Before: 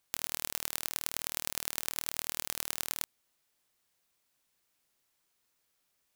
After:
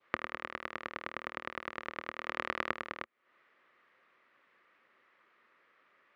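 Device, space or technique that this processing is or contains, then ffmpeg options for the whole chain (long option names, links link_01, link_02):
bass amplifier: -filter_complex "[0:a]aemphasis=mode=production:type=riaa,asplit=3[link_01][link_02][link_03];[link_01]afade=type=out:start_time=2.13:duration=0.02[link_04];[link_02]lowpass=12000,afade=type=in:start_time=2.13:duration=0.02,afade=type=out:start_time=2.68:duration=0.02[link_05];[link_03]afade=type=in:start_time=2.68:duration=0.02[link_06];[link_04][link_05][link_06]amix=inputs=3:normalize=0,adynamicequalizer=threshold=0.002:dfrequency=1600:dqfactor=1.2:tfrequency=1600:tqfactor=1.2:attack=5:release=100:ratio=0.375:range=1.5:mode=cutabove:tftype=bell,acompressor=threshold=-25dB:ratio=4,highpass=frequency=65:width=0.5412,highpass=frequency=65:width=1.3066,equalizer=frequency=230:width_type=q:width=4:gain=6,equalizer=frequency=360:width_type=q:width=4:gain=7,equalizer=frequency=530:width_type=q:width=4:gain=7,equalizer=frequency=790:width_type=q:width=4:gain=-4,equalizer=frequency=1200:width_type=q:width=4:gain=9,equalizer=frequency=1900:width_type=q:width=4:gain=6,lowpass=frequency=2200:width=0.5412,lowpass=frequency=2200:width=1.3066,volume=13dB"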